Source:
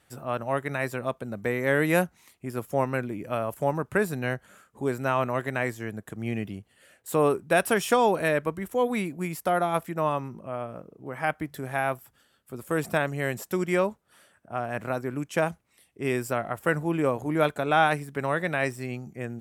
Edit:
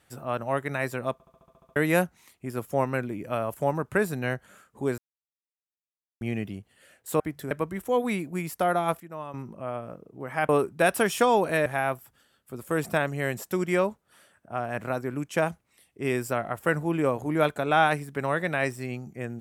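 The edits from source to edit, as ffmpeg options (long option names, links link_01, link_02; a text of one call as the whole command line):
ffmpeg -i in.wav -filter_complex "[0:a]asplit=18[link_01][link_02][link_03][link_04][link_05][link_06][link_07][link_08][link_09][link_10][link_11][link_12][link_13][link_14][link_15][link_16][link_17][link_18];[link_01]atrim=end=1.202[link_19];[link_02]atrim=start=1.128:end=1.202[link_20];[link_03]atrim=start=1.128:end=1.202[link_21];[link_04]atrim=start=1.128:end=1.202[link_22];[link_05]atrim=start=1.128:end=1.202[link_23];[link_06]atrim=start=1.128:end=1.202[link_24];[link_07]atrim=start=1.128:end=1.202[link_25];[link_08]atrim=start=1.128:end=1.202[link_26];[link_09]atrim=start=1.128:end=1.202[link_27];[link_10]atrim=start=1.758:end=4.98,asetpts=PTS-STARTPTS,afade=type=out:start_time=3.218:duration=0.004:curve=hsin[link_28];[link_11]atrim=start=4.98:end=6.21,asetpts=PTS-STARTPTS,volume=0[link_29];[link_12]atrim=start=6.21:end=7.202,asetpts=PTS-STARTPTS,afade=type=in:duration=0.004:curve=hsin[link_30];[link_13]atrim=start=11.348:end=11.662[link_31];[link_14]atrim=start=8.368:end=9.862[link_32];[link_15]atrim=start=9.858:end=10.202,asetpts=PTS-STARTPTS,volume=-11.5dB[link_33];[link_16]atrim=start=10.198:end=11.352[link_34];[link_17]atrim=start=7.198:end=8.372[link_35];[link_18]atrim=start=11.658[link_36];[link_19][link_20]acrossfade=duration=0.004:curve1=hsin:curve2=hsin[link_37];[link_37][link_21]acrossfade=duration=0.004:curve1=hsin:curve2=hsin[link_38];[link_38][link_22]acrossfade=duration=0.004:curve1=hsin:curve2=hsin[link_39];[link_39][link_23]acrossfade=duration=0.004:curve1=hsin:curve2=hsin[link_40];[link_40][link_24]acrossfade=duration=0.004:curve1=hsin:curve2=hsin[link_41];[link_41][link_25]acrossfade=duration=0.004:curve1=hsin:curve2=hsin[link_42];[link_42][link_26]acrossfade=duration=0.004:curve1=hsin:curve2=hsin[link_43];[link_43][link_27]acrossfade=duration=0.004:curve1=hsin:curve2=hsin[link_44];[link_28][link_29][link_30]concat=n=3:v=0:a=1[link_45];[link_44][link_45]acrossfade=duration=0.004:curve1=hsin:curve2=hsin[link_46];[link_46][link_31]acrossfade=duration=0.004:curve1=hsin:curve2=hsin[link_47];[link_47][link_32]acrossfade=duration=0.004:curve1=hsin:curve2=hsin[link_48];[link_48][link_33]acrossfade=duration=0.004:curve1=hsin:curve2=hsin[link_49];[link_49][link_34]acrossfade=duration=0.004:curve1=hsin:curve2=hsin[link_50];[link_50][link_35]acrossfade=duration=0.004:curve1=hsin:curve2=hsin[link_51];[link_51][link_36]acrossfade=duration=0.004:curve1=hsin:curve2=hsin" out.wav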